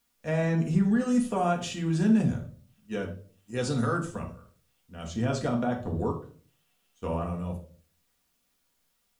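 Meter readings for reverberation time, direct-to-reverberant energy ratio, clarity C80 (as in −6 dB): 0.45 s, 0.5 dB, 15.5 dB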